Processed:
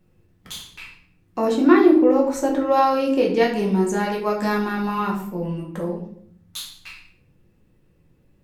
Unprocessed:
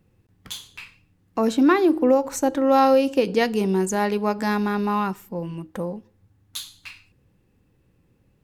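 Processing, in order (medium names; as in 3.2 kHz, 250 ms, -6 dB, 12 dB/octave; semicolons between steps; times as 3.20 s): 1.45–4.04 s: treble shelf 4.9 kHz -6 dB; reverberation RT60 0.60 s, pre-delay 5 ms, DRR -2 dB; trim -2.5 dB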